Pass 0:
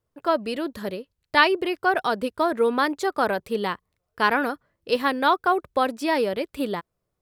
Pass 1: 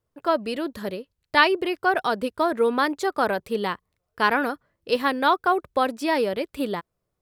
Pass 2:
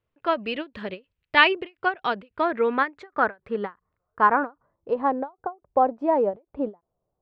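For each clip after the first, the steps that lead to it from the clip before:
no audible change
low-pass sweep 2.7 kHz -> 790 Hz, 2.19–5.21 s; endings held to a fixed fall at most 320 dB/s; trim -2 dB

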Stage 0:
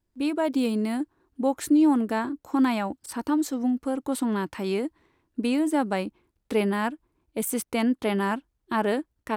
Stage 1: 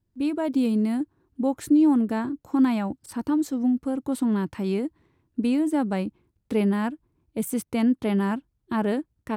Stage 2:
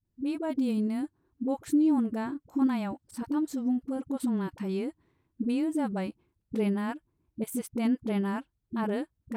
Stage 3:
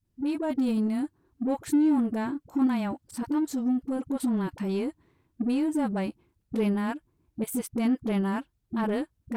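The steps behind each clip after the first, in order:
peaking EQ 120 Hz +12.5 dB 2.4 oct; trim -4.5 dB
phase dispersion highs, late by 51 ms, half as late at 330 Hz; trim -5.5 dB
in parallel at -3 dB: saturation -33.5 dBFS, distortion -7 dB; on the sum: wow and flutter 27 cents

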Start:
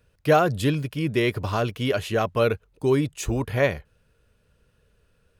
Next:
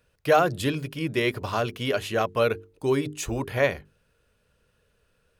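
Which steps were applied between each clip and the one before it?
bass shelf 240 Hz -6 dB; hum notches 50/100/150/200/250/300/350/400/450 Hz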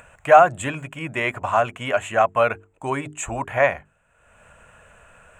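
FFT filter 240 Hz 0 dB, 440 Hz -5 dB, 670 Hz +13 dB, 2.6 kHz +6 dB, 5 kHz -19 dB, 7.5 kHz +13 dB, 11 kHz -11 dB; upward compressor, threshold -34 dBFS; trim -2 dB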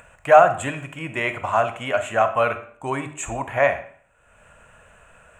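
reverberation RT60 0.55 s, pre-delay 4 ms, DRR 9 dB; trim -1 dB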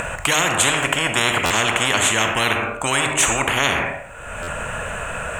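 buffer glitch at 1.45/4.42 s, samples 512, times 4; spectrum-flattening compressor 10:1

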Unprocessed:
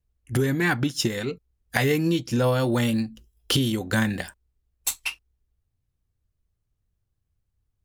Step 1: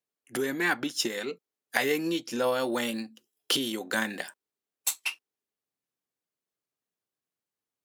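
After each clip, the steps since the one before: Bessel high-pass 350 Hz, order 4; trim -2 dB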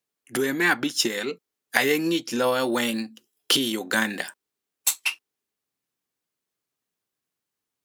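peaking EQ 590 Hz -3 dB 0.96 oct; trim +6 dB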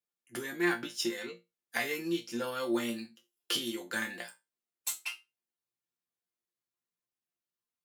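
chord resonator A#2 fifth, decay 0.22 s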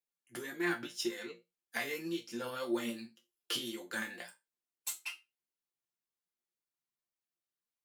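flange 1.8 Hz, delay 1.7 ms, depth 7.2 ms, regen +55%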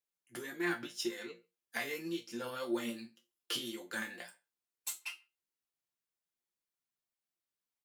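speakerphone echo 140 ms, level -30 dB; trim -1 dB

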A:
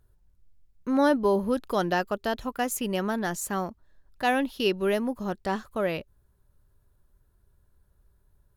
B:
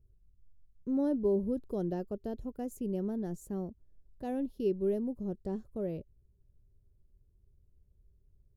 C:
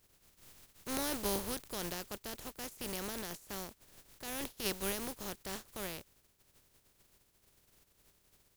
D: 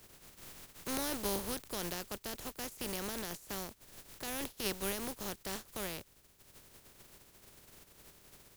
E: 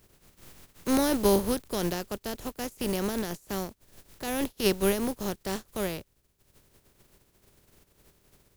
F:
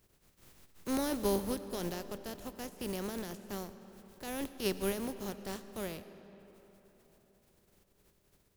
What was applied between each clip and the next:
FFT filter 120 Hz 0 dB, 280 Hz -5 dB, 400 Hz -3 dB, 1.2 kHz -27 dB, 3.1 kHz -27 dB, 7.4 kHz -19 dB; trim -1 dB
spectral contrast reduction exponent 0.3; trim -6 dB
three bands compressed up and down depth 40%; trim +1 dB
spectral contrast expander 1.5:1; trim +6.5 dB
algorithmic reverb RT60 4.2 s, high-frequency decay 0.6×, pre-delay 45 ms, DRR 12 dB; trim -8.5 dB

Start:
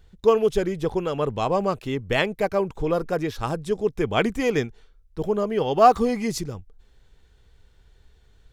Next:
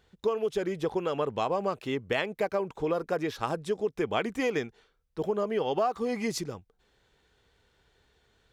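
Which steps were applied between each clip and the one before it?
high-pass 320 Hz 6 dB/octave; treble shelf 5.4 kHz -6 dB; compression 12:1, threshold -24 dBFS, peak gain reduction 14 dB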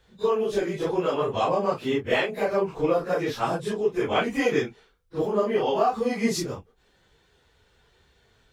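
phase randomisation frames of 100 ms; trim +5 dB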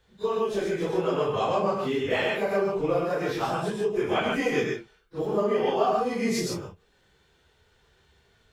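gated-style reverb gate 160 ms rising, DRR 0.5 dB; trim -3.5 dB

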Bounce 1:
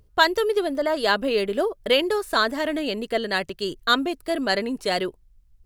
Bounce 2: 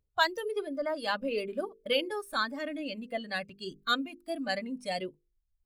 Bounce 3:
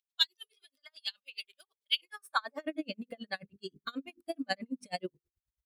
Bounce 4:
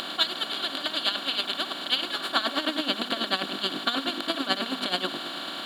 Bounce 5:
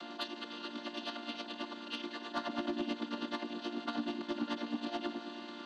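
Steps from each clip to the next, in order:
hum notches 50/100/150/200/250/300/350/400/450/500 Hz; spectral noise reduction 14 dB; trim -8 dB
high-pass sweep 3.4 kHz -> 73 Hz, 1.98–3.11 s; logarithmic tremolo 9.3 Hz, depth 38 dB; trim +2 dB
spectral levelling over time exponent 0.2
vocoder on a held chord major triad, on A#3; saturation -17.5 dBFS, distortion -18 dB; trim -8.5 dB

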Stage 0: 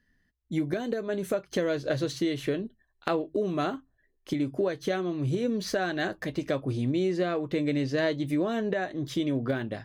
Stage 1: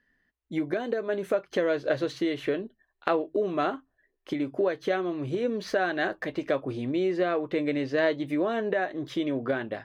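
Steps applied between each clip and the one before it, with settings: tone controls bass -12 dB, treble -13 dB; trim +3.5 dB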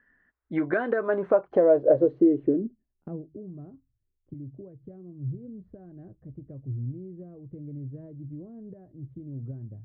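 low-pass sweep 1.5 kHz -> 110 Hz, 0.89–3.55 s; trim +2 dB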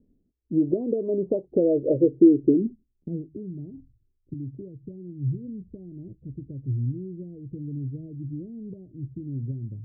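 inverse Chebyshev low-pass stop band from 1.4 kHz, stop band 60 dB; reverse; upward compressor, threshold -44 dBFS; reverse; trim +5.5 dB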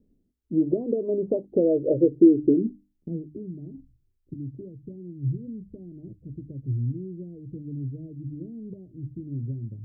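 hum notches 50/100/150/200/250/300 Hz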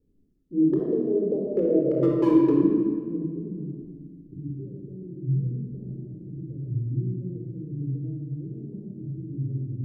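hard clipper -12.5 dBFS, distortion -15 dB; simulated room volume 2800 m³, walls mixed, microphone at 4.1 m; trim -7.5 dB

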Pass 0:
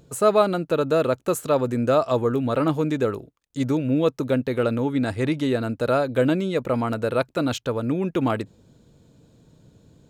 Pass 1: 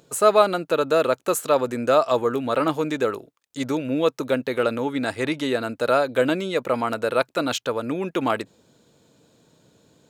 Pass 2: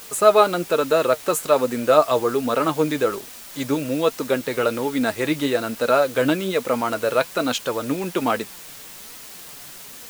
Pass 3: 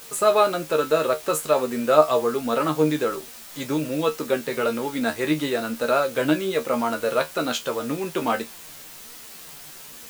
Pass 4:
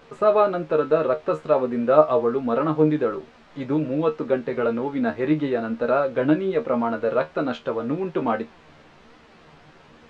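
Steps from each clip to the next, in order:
high-pass 590 Hz 6 dB/octave; trim +4.5 dB
in parallel at +2 dB: word length cut 6-bit, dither triangular; on the sum: flange 1.2 Hz, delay 3.8 ms, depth 3.5 ms, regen +55%; trim -1.5 dB
feedback comb 77 Hz, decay 0.16 s, harmonics all, mix 90%; trim +3 dB
tape spacing loss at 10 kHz 43 dB; trim +3.5 dB

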